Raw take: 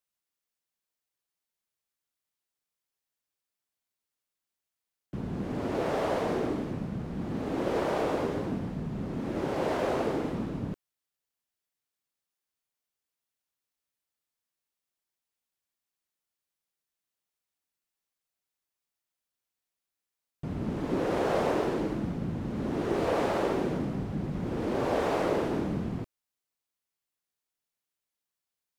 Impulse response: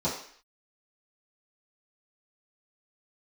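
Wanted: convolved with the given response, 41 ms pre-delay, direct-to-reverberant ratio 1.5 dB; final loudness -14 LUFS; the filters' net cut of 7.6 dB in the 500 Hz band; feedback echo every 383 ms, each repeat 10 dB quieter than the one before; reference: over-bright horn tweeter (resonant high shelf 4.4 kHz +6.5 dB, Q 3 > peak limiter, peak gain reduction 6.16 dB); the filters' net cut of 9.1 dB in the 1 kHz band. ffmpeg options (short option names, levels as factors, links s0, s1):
-filter_complex "[0:a]equalizer=f=500:t=o:g=-7.5,equalizer=f=1000:t=o:g=-9,aecho=1:1:383|766|1149|1532:0.316|0.101|0.0324|0.0104,asplit=2[s0][s1];[1:a]atrim=start_sample=2205,adelay=41[s2];[s1][s2]afir=irnorm=-1:irlink=0,volume=0.282[s3];[s0][s3]amix=inputs=2:normalize=0,highshelf=f=4400:t=q:w=3:g=6.5,volume=6.68,alimiter=limit=0.596:level=0:latency=1"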